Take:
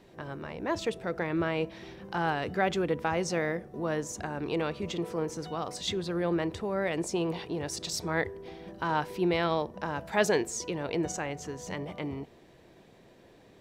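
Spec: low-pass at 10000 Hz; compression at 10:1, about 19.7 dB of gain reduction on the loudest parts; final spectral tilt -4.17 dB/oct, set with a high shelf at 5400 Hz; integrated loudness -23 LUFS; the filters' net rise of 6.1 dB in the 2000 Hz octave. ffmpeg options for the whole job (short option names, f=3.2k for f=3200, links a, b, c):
-af "lowpass=10k,equalizer=f=2k:t=o:g=8,highshelf=f=5.4k:g=-4,acompressor=threshold=-39dB:ratio=10,volume=20dB"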